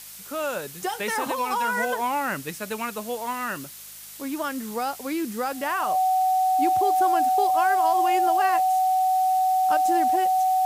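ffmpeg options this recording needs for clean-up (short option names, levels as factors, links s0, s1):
-af "bandreject=f=52.1:t=h:w=4,bandreject=f=104.2:t=h:w=4,bandreject=f=156.3:t=h:w=4,bandreject=f=208.4:t=h:w=4,bandreject=f=750:w=30,afftdn=nr=30:nf=-40"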